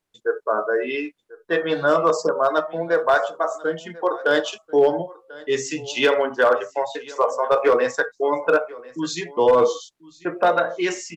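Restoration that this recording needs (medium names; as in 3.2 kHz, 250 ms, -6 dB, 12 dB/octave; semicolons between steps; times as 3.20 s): clip repair -9 dBFS; inverse comb 1041 ms -21 dB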